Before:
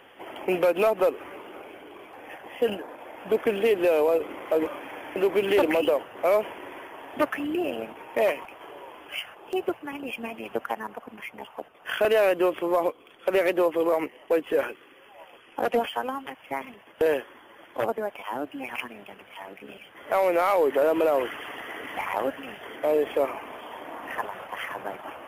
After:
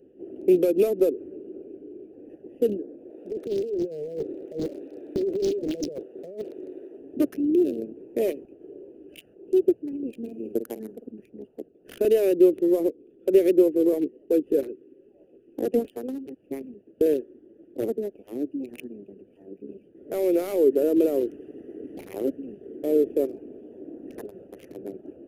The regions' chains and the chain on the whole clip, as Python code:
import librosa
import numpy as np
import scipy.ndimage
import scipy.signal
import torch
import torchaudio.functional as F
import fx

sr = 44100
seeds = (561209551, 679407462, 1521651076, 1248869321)

y = fx.chain(x, sr, fx.highpass(hz=410.0, slope=12),
    fx.over_compress(threshold_db=-29.0, ratio=-1.0),
    fx.doppler_dist(depth_ms=0.75), at=(3.1, 6.98))
y = fx.chain(y, sr, fx.bass_treble(bass_db=-1, treble_db=7),
    fx.doubler(ms=50.0, db=-9.0), at=(10.17, 11.11))
y = fx.wiener(y, sr, points=41)
y = fx.curve_eq(y, sr, hz=(130.0, 380.0, 960.0, 6300.0), db=(0, 10, -23, 3))